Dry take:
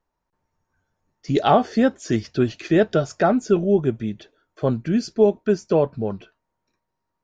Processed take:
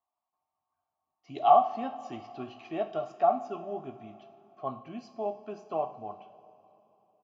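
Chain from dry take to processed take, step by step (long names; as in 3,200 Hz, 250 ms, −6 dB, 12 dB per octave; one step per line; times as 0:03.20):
formant filter a
comb filter 1 ms, depth 65%
coupled-rooms reverb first 0.44 s, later 3.4 s, from −16 dB, DRR 6 dB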